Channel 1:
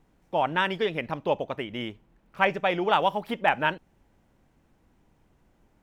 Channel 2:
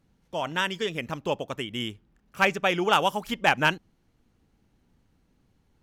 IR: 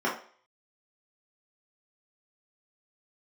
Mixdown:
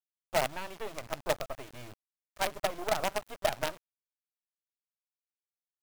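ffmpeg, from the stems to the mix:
-filter_complex "[0:a]equalizer=frequency=650:width_type=o:width=0.38:gain=14.5,acrossover=split=450[link_01][link_02];[link_02]acompressor=threshold=-24dB:ratio=2.5[link_03];[link_01][link_03]amix=inputs=2:normalize=0,volume=-1.5dB[link_04];[1:a]lowpass=1500,acompressor=threshold=-36dB:ratio=3,acrusher=bits=5:dc=4:mix=0:aa=0.000001,adelay=16,volume=-19.5dB[link_05];[link_04][link_05]amix=inputs=2:normalize=0,firequalizer=gain_entry='entry(120,0);entry(180,-19);entry(330,-10);entry(740,-6);entry(3700,-12);entry(7200,-2)':delay=0.05:min_phase=1,acrusher=bits=5:dc=4:mix=0:aa=0.000001"

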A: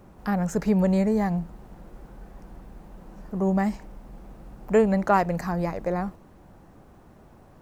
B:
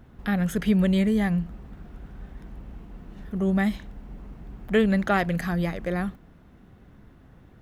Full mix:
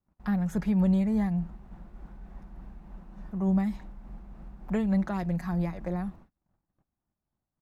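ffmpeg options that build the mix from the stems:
ffmpeg -i stem1.wav -i stem2.wav -filter_complex "[0:a]lowpass=frequency=1900:poles=1,agate=range=-32dB:threshold=-46dB:ratio=16:detection=peak,tremolo=f=3.4:d=0.39,volume=-1dB,asplit=2[link_01][link_02];[1:a]bandreject=frequency=3100:width=7.9,adelay=5,volume=-13dB[link_03];[link_02]apad=whole_len=336148[link_04];[link_03][link_04]sidechaingate=range=-33dB:threshold=-55dB:ratio=16:detection=peak[link_05];[link_01][link_05]amix=inputs=2:normalize=0,equalizer=frequency=460:width=1.6:gain=-8.5,acrossover=split=430|3000[link_06][link_07][link_08];[link_07]acompressor=threshold=-39dB:ratio=3[link_09];[link_06][link_09][link_08]amix=inputs=3:normalize=0" out.wav

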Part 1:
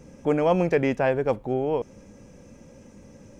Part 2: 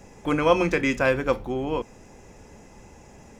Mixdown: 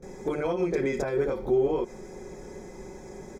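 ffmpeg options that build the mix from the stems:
ffmpeg -i stem1.wav -i stem2.wav -filter_complex "[0:a]lowpass=frequency=1200:poles=1,acompressor=threshold=-23dB:ratio=6,volume=-8dB[link_01];[1:a]aecho=1:1:5.4:0.55,acompressor=threshold=-23dB:ratio=6,alimiter=level_in=3dB:limit=-24dB:level=0:latency=1:release=70,volume=-3dB,adelay=24,volume=1dB[link_02];[link_01][link_02]amix=inputs=2:normalize=0,asuperstop=centerf=2800:order=4:qfactor=4.2,equalizer=frequency=390:width_type=o:width=0.58:gain=10.5" out.wav

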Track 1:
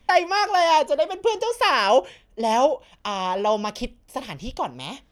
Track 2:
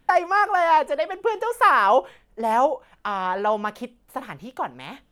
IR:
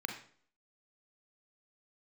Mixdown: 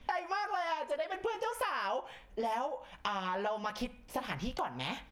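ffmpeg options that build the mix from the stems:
-filter_complex "[0:a]acompressor=threshold=-36dB:ratio=2,lowpass=5200,volume=1dB[link_01];[1:a]equalizer=frequency=380:width_type=o:width=0.76:gain=-14.5,acompressor=threshold=-23dB:ratio=6,adelay=16,volume=-3.5dB,asplit=2[link_02][link_03];[link_03]volume=-9dB[link_04];[2:a]atrim=start_sample=2205[link_05];[link_04][link_05]afir=irnorm=-1:irlink=0[link_06];[link_01][link_02][link_06]amix=inputs=3:normalize=0,acompressor=threshold=-32dB:ratio=6"

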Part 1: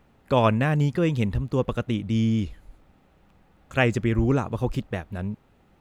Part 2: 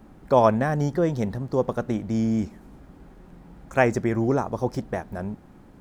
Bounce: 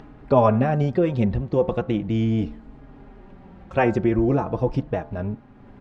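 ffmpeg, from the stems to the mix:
ffmpeg -i stem1.wav -i stem2.wav -filter_complex "[0:a]volume=-0.5dB[link_01];[1:a]bandreject=frequency=74.86:width_type=h:width=4,bandreject=frequency=149.72:width_type=h:width=4,bandreject=frequency=224.58:width_type=h:width=4,bandreject=frequency=299.44:width_type=h:width=4,bandreject=frequency=374.3:width_type=h:width=4,bandreject=frequency=449.16:width_type=h:width=4,bandreject=frequency=524.02:width_type=h:width=4,bandreject=frequency=598.88:width_type=h:width=4,bandreject=frequency=673.74:width_type=h:width=4,bandreject=frequency=748.6:width_type=h:width=4,bandreject=frequency=823.46:width_type=h:width=4,bandreject=frequency=898.32:width_type=h:width=4,bandreject=frequency=973.18:width_type=h:width=4,bandreject=frequency=1048.04:width_type=h:width=4,bandreject=frequency=1122.9:width_type=h:width=4,bandreject=frequency=1197.76:width_type=h:width=4,bandreject=frequency=1272.62:width_type=h:width=4,bandreject=frequency=1347.48:width_type=h:width=4,bandreject=frequency=1422.34:width_type=h:width=4,bandreject=frequency=1497.2:width_type=h:width=4,bandreject=frequency=1572.06:width_type=h:width=4,asplit=2[link_02][link_03];[link_03]adelay=4.3,afreqshift=-0.4[link_04];[link_02][link_04]amix=inputs=2:normalize=1,volume=3dB,asplit=2[link_05][link_06];[link_06]apad=whole_len=256207[link_07];[link_01][link_07]sidechaincompress=threshold=-23dB:ratio=8:attack=16:release=153[link_08];[link_08][link_05]amix=inputs=2:normalize=0,lowpass=3100,acompressor=mode=upward:threshold=-38dB:ratio=2.5" out.wav

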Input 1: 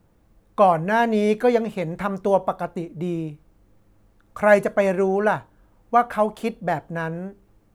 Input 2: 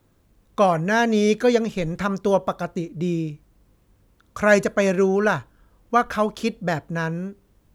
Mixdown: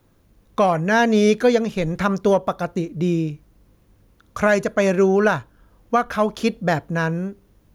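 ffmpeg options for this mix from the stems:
ffmpeg -i stem1.wav -i stem2.wav -filter_complex "[0:a]asoftclip=type=hard:threshold=-14.5dB,volume=-11.5dB[link_01];[1:a]bandreject=frequency=7800:width=7.7,volume=2.5dB[link_02];[link_01][link_02]amix=inputs=2:normalize=0,alimiter=limit=-7dB:level=0:latency=1:release=469" out.wav

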